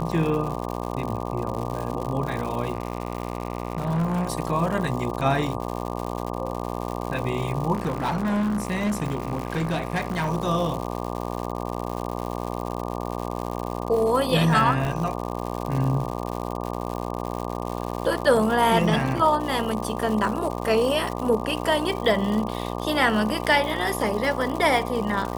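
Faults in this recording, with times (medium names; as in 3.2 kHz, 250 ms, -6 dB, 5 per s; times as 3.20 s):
buzz 60 Hz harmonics 20 -30 dBFS
crackle 170 per s -29 dBFS
2.73–4.27 s: clipped -20 dBFS
7.73–10.29 s: clipped -20.5 dBFS
14.85 s: dropout 2 ms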